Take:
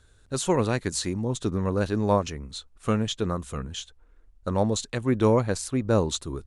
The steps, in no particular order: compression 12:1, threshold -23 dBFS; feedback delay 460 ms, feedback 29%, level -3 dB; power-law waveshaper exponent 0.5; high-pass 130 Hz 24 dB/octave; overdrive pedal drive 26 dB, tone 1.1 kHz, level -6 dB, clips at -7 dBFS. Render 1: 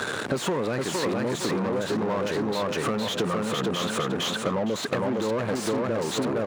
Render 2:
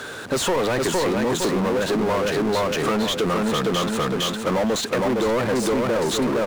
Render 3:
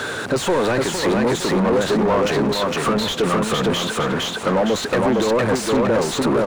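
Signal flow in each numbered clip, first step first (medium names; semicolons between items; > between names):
power-law waveshaper > feedback delay > overdrive pedal > high-pass > compression; high-pass > overdrive pedal > feedback delay > compression > power-law waveshaper; high-pass > power-law waveshaper > compression > feedback delay > overdrive pedal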